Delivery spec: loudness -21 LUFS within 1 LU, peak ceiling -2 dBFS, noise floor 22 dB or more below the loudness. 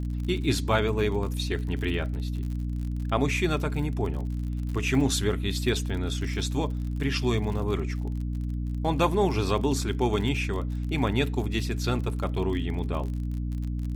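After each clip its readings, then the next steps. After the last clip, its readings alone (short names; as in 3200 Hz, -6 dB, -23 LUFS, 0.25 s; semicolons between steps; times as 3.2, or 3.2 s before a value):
ticks 45/s; hum 60 Hz; harmonics up to 300 Hz; hum level -27 dBFS; loudness -28.0 LUFS; peak -10.5 dBFS; loudness target -21.0 LUFS
-> de-click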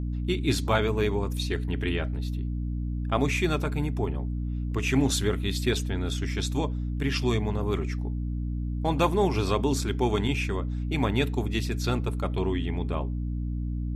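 ticks 0/s; hum 60 Hz; harmonics up to 300 Hz; hum level -27 dBFS
-> notches 60/120/180/240/300 Hz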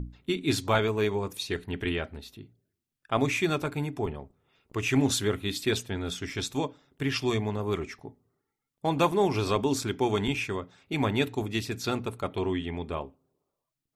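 hum none; loudness -29.5 LUFS; peak -12.0 dBFS; loudness target -21.0 LUFS
-> gain +8.5 dB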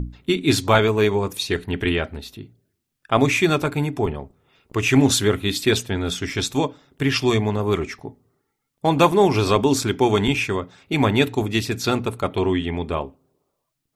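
loudness -21.0 LUFS; peak -3.5 dBFS; noise floor -77 dBFS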